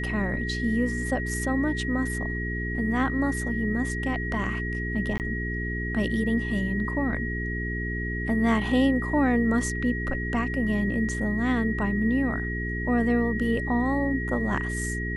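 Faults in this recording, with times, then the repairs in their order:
hum 60 Hz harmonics 7 -31 dBFS
whine 1.9 kHz -32 dBFS
5.18–5.20 s: dropout 18 ms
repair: band-stop 1.9 kHz, Q 30; de-hum 60 Hz, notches 7; interpolate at 5.18 s, 18 ms

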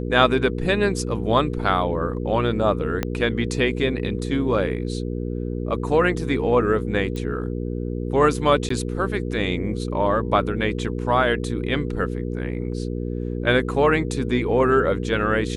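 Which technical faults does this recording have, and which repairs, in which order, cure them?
hum 60 Hz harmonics 8 -27 dBFS
3.03 s: pop -9 dBFS
7.16 s: pop -19 dBFS
8.69–8.70 s: dropout 14 ms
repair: de-click; de-hum 60 Hz, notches 8; interpolate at 8.69 s, 14 ms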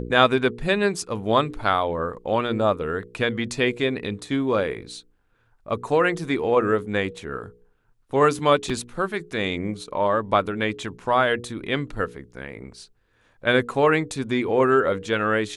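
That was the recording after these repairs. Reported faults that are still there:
3.03 s: pop

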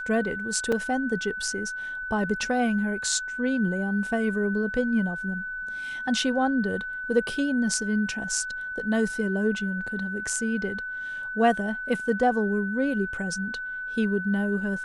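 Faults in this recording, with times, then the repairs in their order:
whine 1.5 kHz -31 dBFS
0.72 s: dropout 4.2 ms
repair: band-stop 1.5 kHz, Q 30; interpolate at 0.72 s, 4.2 ms

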